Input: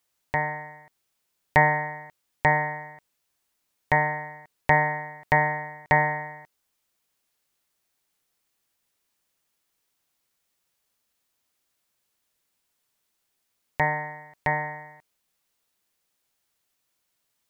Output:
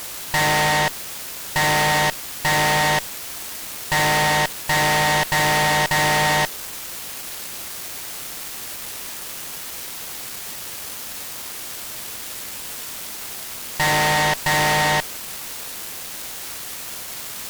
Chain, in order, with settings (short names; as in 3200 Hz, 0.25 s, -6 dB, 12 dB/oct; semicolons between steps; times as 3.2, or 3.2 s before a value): power-law curve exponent 0.5; fuzz box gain 40 dB, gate -39 dBFS; gain -4.5 dB